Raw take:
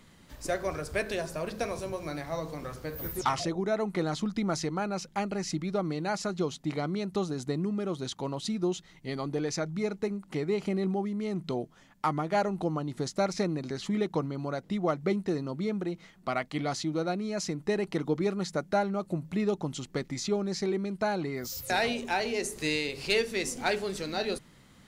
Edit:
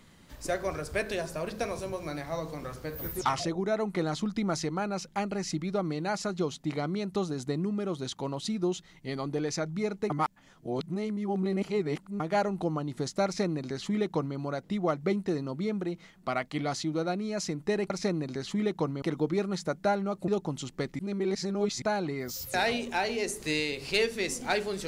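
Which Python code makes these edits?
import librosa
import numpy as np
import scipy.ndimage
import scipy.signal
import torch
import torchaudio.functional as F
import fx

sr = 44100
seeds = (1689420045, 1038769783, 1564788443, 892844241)

y = fx.edit(x, sr, fx.reverse_span(start_s=10.1, length_s=2.1),
    fx.duplicate(start_s=13.25, length_s=1.12, to_s=17.9),
    fx.cut(start_s=19.16, length_s=0.28),
    fx.reverse_span(start_s=20.15, length_s=0.83), tone=tone)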